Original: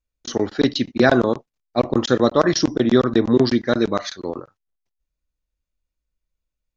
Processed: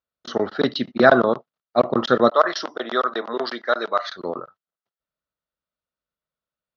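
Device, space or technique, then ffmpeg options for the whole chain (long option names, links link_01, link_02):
kitchen radio: -filter_complex "[0:a]asettb=1/sr,asplit=3[link_01][link_02][link_03];[link_01]atrim=end=2.304[link_04];[link_02]atrim=start=2.3:end=4.07,asetpts=PTS-STARTPTS,afade=type=in:duration=0.004:curve=qsin,afade=type=out:start_time=1.766:duration=0.004:curve=qsin,highpass=620[link_05];[link_03]atrim=start=4.066[link_06];[link_04][link_05]acrossfade=duration=0.004:curve1=hsin:curve2=qsin[link_07];[link_07][link_06]acrossfade=duration=0.004:curve1=qsin:curve2=hsin,highpass=170,equalizer=frequency=300:width_type=q:width=4:gain=-7,equalizer=frequency=640:width_type=q:width=4:gain=5,equalizer=frequency=1300:width_type=q:width=4:gain=9,equalizer=frequency=2400:width_type=q:width=4:gain=-7,lowpass=frequency=4300:width=0.5412,lowpass=frequency=4300:width=1.3066"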